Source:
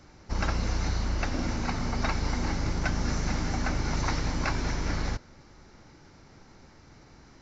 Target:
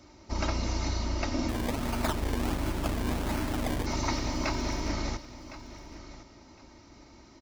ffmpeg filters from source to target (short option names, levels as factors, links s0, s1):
-filter_complex "[0:a]highpass=f=75:p=1,equalizer=f=1600:t=o:w=0.39:g=-9,aecho=1:1:3.2:0.54,asplit=3[s0][s1][s2];[s0]afade=t=out:st=1.48:d=0.02[s3];[s1]acrusher=samples=23:mix=1:aa=0.000001:lfo=1:lforange=23:lforate=1.4,afade=t=in:st=1.48:d=0.02,afade=t=out:st=3.85:d=0.02[s4];[s2]afade=t=in:st=3.85:d=0.02[s5];[s3][s4][s5]amix=inputs=3:normalize=0,aecho=1:1:1060|2120:0.178|0.0391"